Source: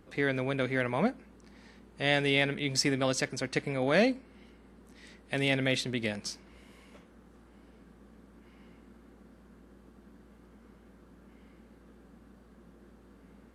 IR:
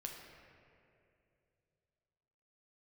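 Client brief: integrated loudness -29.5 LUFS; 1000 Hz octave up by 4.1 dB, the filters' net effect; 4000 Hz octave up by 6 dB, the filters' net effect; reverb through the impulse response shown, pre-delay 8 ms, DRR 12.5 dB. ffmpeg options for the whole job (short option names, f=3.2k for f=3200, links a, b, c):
-filter_complex "[0:a]equalizer=f=1k:t=o:g=5.5,equalizer=f=4k:t=o:g=7.5,asplit=2[a][b];[1:a]atrim=start_sample=2205,adelay=8[c];[b][c]afir=irnorm=-1:irlink=0,volume=-10dB[d];[a][d]amix=inputs=2:normalize=0,volume=-3dB"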